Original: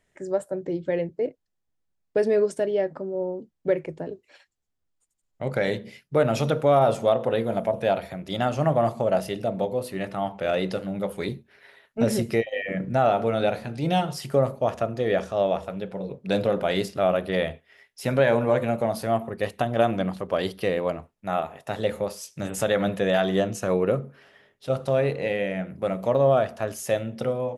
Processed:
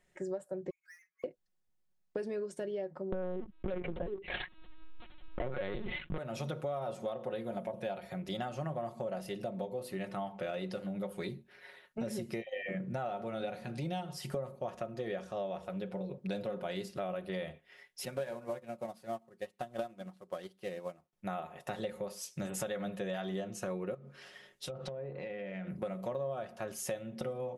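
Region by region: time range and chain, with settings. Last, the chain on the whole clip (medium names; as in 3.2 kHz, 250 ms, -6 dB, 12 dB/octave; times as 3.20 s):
0.70–1.24 s: spectral contrast enhancement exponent 2 + brick-wall FIR band-pass 1.1–2.6 kHz + power-law waveshaper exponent 0.5
3.12–6.18 s: waveshaping leveller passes 3 + LPC vocoder at 8 kHz pitch kept + level flattener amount 70%
18.05–21.13 s: CVSD coder 64 kbps + bass shelf 68 Hz -10.5 dB + upward expansion 2.5:1, over -32 dBFS
23.94–25.68 s: low-pass that closes with the level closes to 910 Hz, closed at -19.5 dBFS + peaking EQ 8 kHz +11.5 dB 2.6 oct + compression 12:1, threshold -35 dBFS
whole clip: comb 5.5 ms, depth 54%; compression 6:1, threshold -32 dBFS; trim -3.5 dB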